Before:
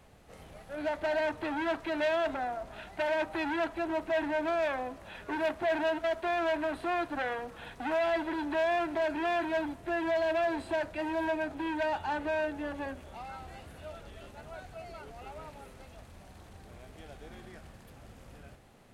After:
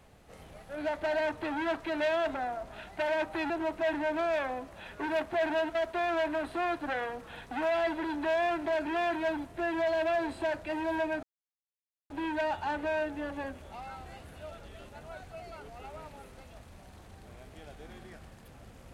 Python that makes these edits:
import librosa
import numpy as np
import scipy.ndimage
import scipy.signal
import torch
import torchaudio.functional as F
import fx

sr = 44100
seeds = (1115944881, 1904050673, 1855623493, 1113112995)

y = fx.edit(x, sr, fx.cut(start_s=3.5, length_s=0.29),
    fx.insert_silence(at_s=11.52, length_s=0.87), tone=tone)